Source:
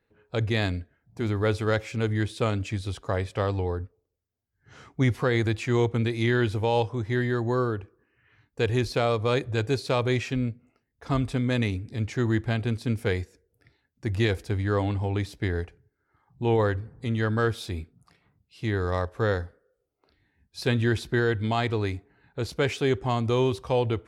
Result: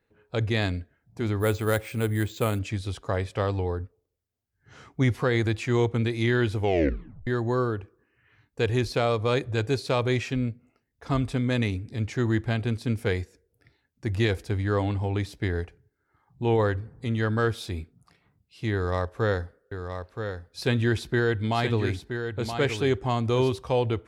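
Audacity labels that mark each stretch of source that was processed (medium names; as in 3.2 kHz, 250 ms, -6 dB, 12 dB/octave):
1.400000	2.590000	careless resampling rate divided by 4×, down filtered, up hold
6.590000	6.590000	tape stop 0.68 s
18.740000	23.510000	delay 974 ms -7.5 dB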